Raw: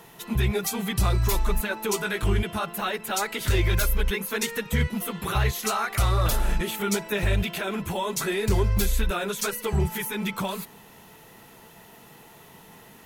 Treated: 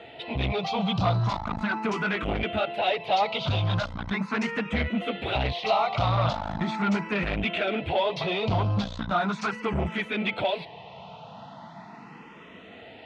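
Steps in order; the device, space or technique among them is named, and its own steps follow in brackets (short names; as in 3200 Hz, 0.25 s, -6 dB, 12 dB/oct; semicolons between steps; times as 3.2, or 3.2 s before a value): barber-pole phaser into a guitar amplifier (endless phaser +0.39 Hz; soft clip -27.5 dBFS, distortion -9 dB; speaker cabinet 100–3700 Hz, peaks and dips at 390 Hz -8 dB, 690 Hz +7 dB, 1700 Hz -7 dB); gain +9 dB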